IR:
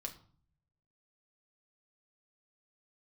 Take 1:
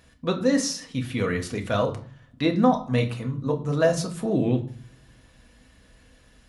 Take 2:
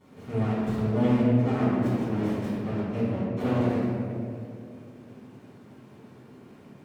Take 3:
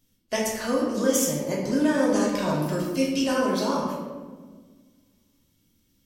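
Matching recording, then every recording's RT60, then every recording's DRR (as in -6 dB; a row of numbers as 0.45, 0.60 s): 1; 0.50, 2.5, 1.5 s; 2.5, -13.0, -5.0 dB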